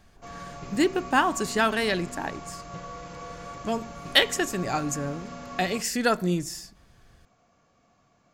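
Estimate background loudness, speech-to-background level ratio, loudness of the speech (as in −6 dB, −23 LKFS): −40.5 LKFS, 14.5 dB, −26.0 LKFS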